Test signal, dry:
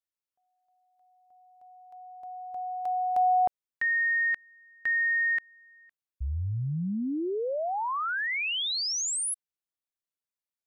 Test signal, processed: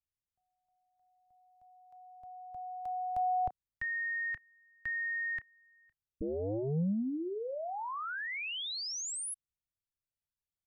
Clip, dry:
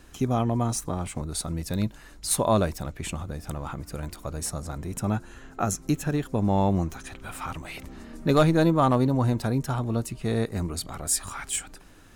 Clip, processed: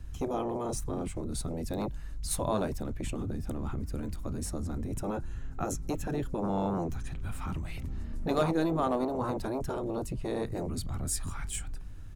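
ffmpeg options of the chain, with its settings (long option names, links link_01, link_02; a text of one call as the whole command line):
ffmpeg -i in.wav -filter_complex "[0:a]acrossover=split=130|2700[link_01][link_02][link_03];[link_01]aeval=exprs='0.075*sin(PI/2*7.94*val(0)/0.075)':channel_layout=same[link_04];[link_02]asplit=2[link_05][link_06];[link_06]adelay=31,volume=-13.5dB[link_07];[link_05][link_07]amix=inputs=2:normalize=0[link_08];[link_04][link_08][link_03]amix=inputs=3:normalize=0,volume=-8.5dB" out.wav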